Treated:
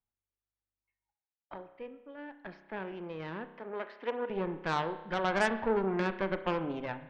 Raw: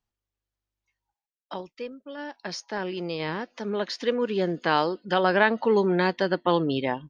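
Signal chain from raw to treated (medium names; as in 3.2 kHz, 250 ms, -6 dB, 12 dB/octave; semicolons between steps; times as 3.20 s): low-pass 2.4 kHz 24 dB/octave; Chebyshev shaper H 6 -15 dB, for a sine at -7 dBFS; 3.52–4.30 s: high-pass 330 Hz 12 dB/octave; spring tank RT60 1 s, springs 31 ms, chirp 40 ms, DRR 10 dB; trim -9 dB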